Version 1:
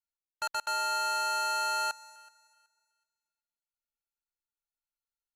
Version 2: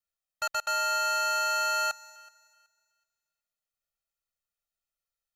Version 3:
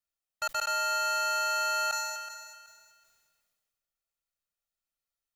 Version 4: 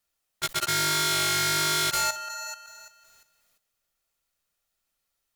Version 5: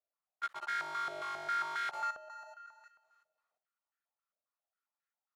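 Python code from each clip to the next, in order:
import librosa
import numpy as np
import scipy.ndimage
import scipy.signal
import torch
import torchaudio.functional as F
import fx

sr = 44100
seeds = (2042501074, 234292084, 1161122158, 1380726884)

y1 = x + 0.96 * np.pad(x, (int(1.6 * sr / 1000.0), 0))[:len(x)]
y2 = fx.sustainer(y1, sr, db_per_s=32.0)
y2 = F.gain(torch.from_numpy(y2), -1.5).numpy()
y3 = fx.fold_sine(y2, sr, drive_db=13, ceiling_db=-18.5)
y3 = fx.level_steps(y3, sr, step_db=11)
y3 = F.gain(torch.from_numpy(y3), -3.0).numpy()
y4 = fx.filter_held_bandpass(y3, sr, hz=7.4, low_hz=620.0, high_hz=1600.0)
y4 = F.gain(torch.from_numpy(y4), -2.0).numpy()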